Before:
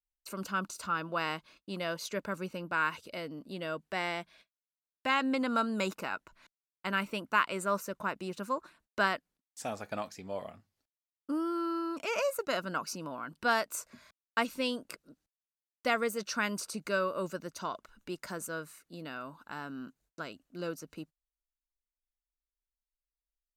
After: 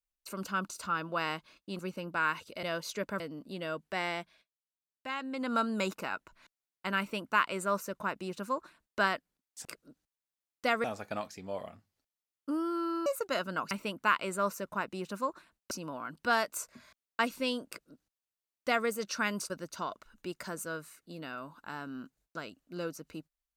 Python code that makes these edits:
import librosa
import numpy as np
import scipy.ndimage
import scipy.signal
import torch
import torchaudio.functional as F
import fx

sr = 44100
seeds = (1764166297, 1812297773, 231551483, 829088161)

y = fx.edit(x, sr, fx.move(start_s=1.79, length_s=0.57, to_s=3.2),
    fx.fade_down_up(start_s=4.2, length_s=1.35, db=-8.5, fade_s=0.23),
    fx.duplicate(start_s=6.99, length_s=2.0, to_s=12.89),
    fx.cut(start_s=11.87, length_s=0.37),
    fx.duplicate(start_s=14.86, length_s=1.19, to_s=9.65),
    fx.cut(start_s=16.68, length_s=0.65), tone=tone)